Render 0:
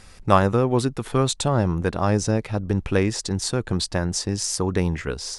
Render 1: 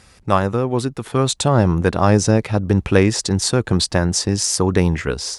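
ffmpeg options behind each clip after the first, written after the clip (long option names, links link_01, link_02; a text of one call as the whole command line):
ffmpeg -i in.wav -af "highpass=51,dynaudnorm=framelen=530:gausssize=3:maxgain=11.5dB" out.wav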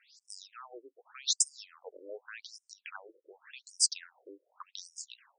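ffmpeg -i in.wav -af "aderivative,afftfilt=real='re*between(b*sr/1024,390*pow(7100/390,0.5+0.5*sin(2*PI*0.86*pts/sr))/1.41,390*pow(7100/390,0.5+0.5*sin(2*PI*0.86*pts/sr))*1.41)':imag='im*between(b*sr/1024,390*pow(7100/390,0.5+0.5*sin(2*PI*0.86*pts/sr))/1.41,390*pow(7100/390,0.5+0.5*sin(2*PI*0.86*pts/sr))*1.41)':win_size=1024:overlap=0.75" out.wav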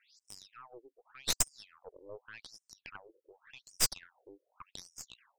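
ffmpeg -i in.wav -filter_complex "[0:a]asplit=2[link_01][link_02];[link_02]alimiter=limit=-20dB:level=0:latency=1:release=264,volume=-1.5dB[link_03];[link_01][link_03]amix=inputs=2:normalize=0,aeval=exprs='0.447*(cos(1*acos(clip(val(0)/0.447,-1,1)))-cos(1*PI/2))+0.0224*(cos(3*acos(clip(val(0)/0.447,-1,1)))-cos(3*PI/2))+0.0708*(cos(6*acos(clip(val(0)/0.447,-1,1)))-cos(6*PI/2))+0.0178*(cos(7*acos(clip(val(0)/0.447,-1,1)))-cos(7*PI/2))':channel_layout=same,volume=-4.5dB" out.wav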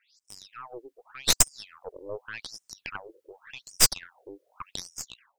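ffmpeg -i in.wav -af "dynaudnorm=framelen=130:gausssize=7:maxgain=11dB" out.wav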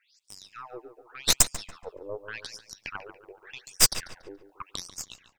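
ffmpeg -i in.wav -filter_complex "[0:a]asplit=2[link_01][link_02];[link_02]adelay=142,lowpass=frequency=2900:poles=1,volume=-11dB,asplit=2[link_03][link_04];[link_04]adelay=142,lowpass=frequency=2900:poles=1,volume=0.42,asplit=2[link_05][link_06];[link_06]adelay=142,lowpass=frequency=2900:poles=1,volume=0.42,asplit=2[link_07][link_08];[link_08]adelay=142,lowpass=frequency=2900:poles=1,volume=0.42[link_09];[link_01][link_03][link_05][link_07][link_09]amix=inputs=5:normalize=0" out.wav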